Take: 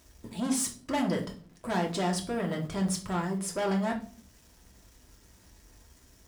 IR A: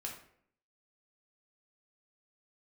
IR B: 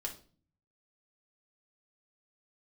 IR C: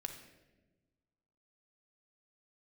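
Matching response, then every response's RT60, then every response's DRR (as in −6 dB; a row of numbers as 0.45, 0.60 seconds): B; 0.65, 0.40, 1.2 seconds; −1.5, 0.0, 4.0 decibels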